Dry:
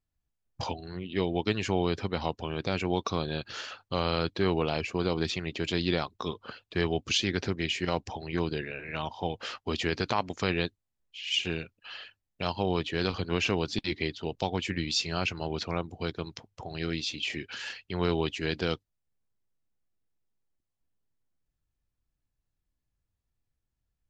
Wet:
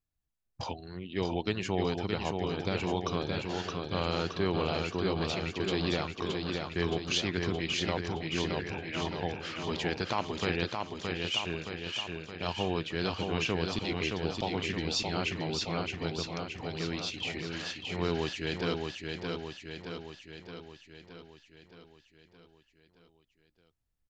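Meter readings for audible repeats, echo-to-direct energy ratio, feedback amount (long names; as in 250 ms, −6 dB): 7, −2.0 dB, 59%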